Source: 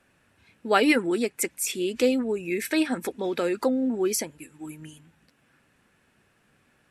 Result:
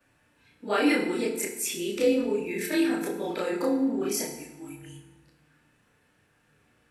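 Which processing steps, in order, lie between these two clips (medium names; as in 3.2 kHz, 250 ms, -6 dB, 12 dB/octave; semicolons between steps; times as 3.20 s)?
short-time spectra conjugated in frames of 68 ms; in parallel at -2 dB: peak limiter -20.5 dBFS, peak gain reduction 11.5 dB; on the sum: FDN reverb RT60 0.98 s, low-frequency decay 1.25×, high-frequency decay 0.8×, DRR 2.5 dB; trim -5 dB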